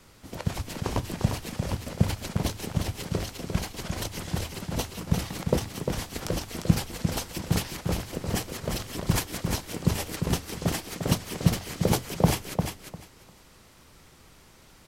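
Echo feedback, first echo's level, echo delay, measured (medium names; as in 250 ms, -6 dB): 17%, -6.0 dB, 350 ms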